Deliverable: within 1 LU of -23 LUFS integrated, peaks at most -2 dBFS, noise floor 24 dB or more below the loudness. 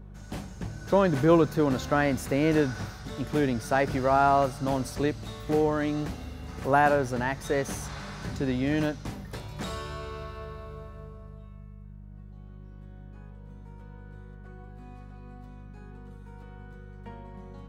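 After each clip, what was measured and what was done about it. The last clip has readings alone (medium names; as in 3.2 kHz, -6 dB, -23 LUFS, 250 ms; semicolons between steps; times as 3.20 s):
hum 50 Hz; highest harmonic 200 Hz; hum level -43 dBFS; loudness -27.0 LUFS; peak level -7.5 dBFS; loudness target -23.0 LUFS
-> de-hum 50 Hz, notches 4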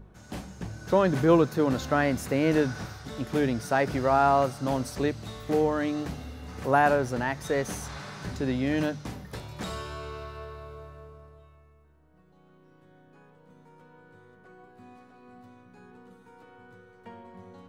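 hum not found; loudness -27.0 LUFS; peak level -8.0 dBFS; loudness target -23.0 LUFS
-> trim +4 dB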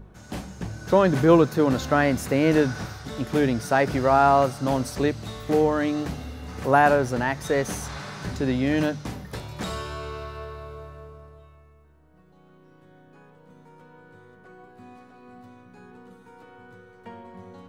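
loudness -23.0 LUFS; peak level -4.0 dBFS; noise floor -54 dBFS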